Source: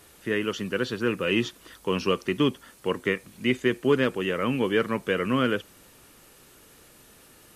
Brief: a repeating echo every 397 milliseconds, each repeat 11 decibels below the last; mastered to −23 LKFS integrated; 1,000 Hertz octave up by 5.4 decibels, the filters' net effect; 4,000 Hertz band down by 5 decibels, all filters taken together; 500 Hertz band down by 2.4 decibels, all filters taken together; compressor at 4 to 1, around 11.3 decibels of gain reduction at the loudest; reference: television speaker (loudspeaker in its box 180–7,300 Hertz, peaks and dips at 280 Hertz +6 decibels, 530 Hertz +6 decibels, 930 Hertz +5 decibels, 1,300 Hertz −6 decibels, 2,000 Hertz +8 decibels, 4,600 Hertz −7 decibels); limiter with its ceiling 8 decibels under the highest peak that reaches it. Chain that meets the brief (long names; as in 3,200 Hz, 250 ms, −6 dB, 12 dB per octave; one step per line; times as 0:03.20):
parametric band 500 Hz −8 dB
parametric band 1,000 Hz +8 dB
parametric band 4,000 Hz −9 dB
downward compressor 4 to 1, threshold −33 dBFS
brickwall limiter −27.5 dBFS
loudspeaker in its box 180–7,300 Hz, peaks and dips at 280 Hz +6 dB, 530 Hz +6 dB, 930 Hz +5 dB, 1,300 Hz −6 dB, 2,000 Hz +8 dB, 4,600 Hz −7 dB
repeating echo 397 ms, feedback 28%, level −11 dB
level +14.5 dB